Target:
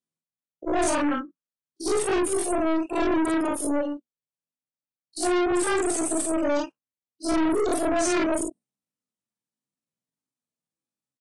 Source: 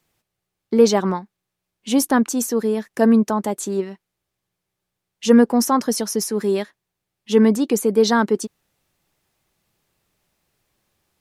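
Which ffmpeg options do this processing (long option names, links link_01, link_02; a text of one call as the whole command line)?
ffmpeg -i in.wav -af "afftfilt=real='re':imag='-im':win_size=4096:overlap=0.75,highpass=frequency=80:width=0.5412,highpass=frequency=80:width=1.3066,bass=frequency=250:gain=8,treble=frequency=4000:gain=10,bandreject=frequency=60:width_type=h:width=6,bandreject=frequency=120:width_type=h:width=6,aeval=exprs='(tanh(20*val(0)+0.3)-tanh(0.3))/20':channel_layout=same,afftdn=noise_reduction=26:noise_floor=-44,asetrate=66075,aresample=44100,atempo=0.66742,aresample=22050,aresample=44100,volume=5dB" out.wav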